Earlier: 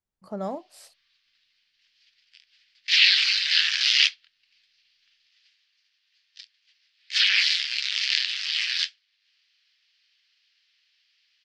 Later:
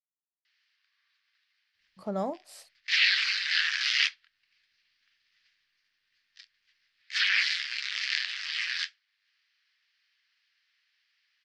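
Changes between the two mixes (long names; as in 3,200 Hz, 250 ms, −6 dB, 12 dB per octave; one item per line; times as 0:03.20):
speech: entry +1.75 s
background: add high shelf with overshoot 2,300 Hz −6.5 dB, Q 1.5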